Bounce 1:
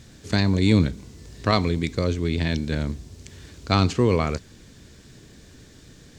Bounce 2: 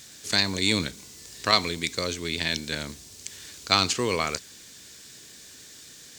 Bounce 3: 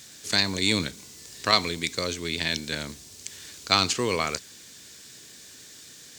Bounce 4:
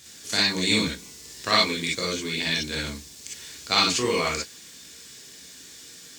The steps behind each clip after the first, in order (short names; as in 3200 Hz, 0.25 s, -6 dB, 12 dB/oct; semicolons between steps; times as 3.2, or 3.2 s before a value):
tilt +4 dB/oct; gain -1 dB
HPF 61 Hz
non-linear reverb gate 80 ms rising, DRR -4.5 dB; gain -4 dB